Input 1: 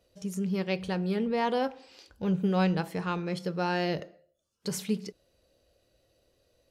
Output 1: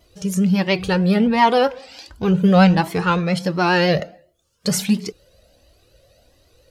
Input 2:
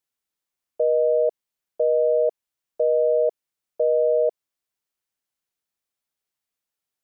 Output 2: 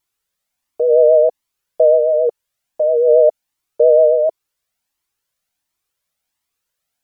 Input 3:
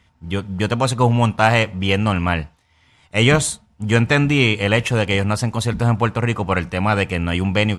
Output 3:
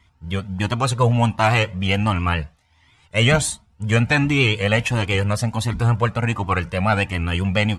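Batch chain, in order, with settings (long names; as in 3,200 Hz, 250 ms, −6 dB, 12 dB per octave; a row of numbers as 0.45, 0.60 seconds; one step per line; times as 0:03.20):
parametric band 390 Hz −2.5 dB 0.54 octaves
pitch vibrato 7.3 Hz 47 cents
flanger whose copies keep moving one way rising 1.4 Hz
normalise the peak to −3 dBFS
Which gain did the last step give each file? +18.0, +13.5, +3.0 decibels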